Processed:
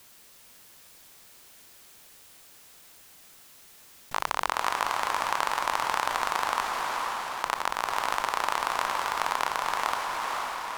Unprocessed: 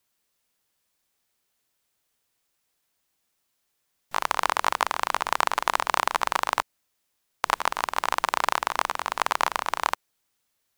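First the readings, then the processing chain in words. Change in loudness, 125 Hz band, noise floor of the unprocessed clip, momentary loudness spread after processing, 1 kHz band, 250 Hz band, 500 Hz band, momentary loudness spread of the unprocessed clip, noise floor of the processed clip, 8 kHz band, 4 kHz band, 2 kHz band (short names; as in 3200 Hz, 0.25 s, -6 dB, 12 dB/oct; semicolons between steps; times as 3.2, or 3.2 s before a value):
-2.5 dB, n/a, -76 dBFS, 3 LU, -1.5 dB, -1.5 dB, -1.5 dB, 5 LU, -53 dBFS, -1.5 dB, -1.5 dB, -1.5 dB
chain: on a send: diffused feedback echo 0.487 s, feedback 42%, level -3.5 dB; on the sum: fast leveller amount 50%; gain -6.5 dB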